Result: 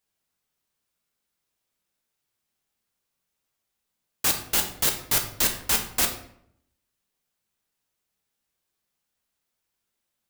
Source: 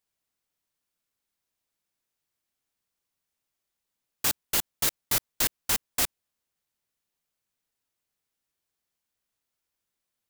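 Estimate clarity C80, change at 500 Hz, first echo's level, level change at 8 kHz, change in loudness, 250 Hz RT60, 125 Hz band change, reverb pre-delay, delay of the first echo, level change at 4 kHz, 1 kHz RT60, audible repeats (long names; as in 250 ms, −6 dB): 12.0 dB, +4.0 dB, no echo audible, +3.5 dB, +3.5 dB, 0.90 s, +4.0 dB, 6 ms, no echo audible, +3.5 dB, 0.65 s, no echo audible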